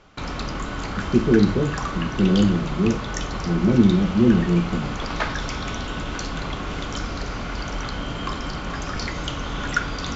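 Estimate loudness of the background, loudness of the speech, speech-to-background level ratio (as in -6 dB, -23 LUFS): -29.0 LUFS, -20.5 LUFS, 8.5 dB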